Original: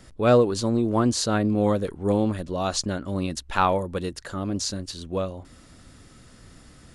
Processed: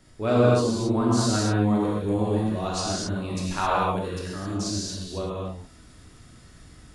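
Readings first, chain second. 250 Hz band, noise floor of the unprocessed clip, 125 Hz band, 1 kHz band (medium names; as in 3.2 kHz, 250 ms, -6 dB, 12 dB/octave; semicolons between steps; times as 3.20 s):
0.0 dB, -51 dBFS, +2.0 dB, -0.5 dB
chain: gated-style reverb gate 290 ms flat, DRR -6.5 dB; trim -8 dB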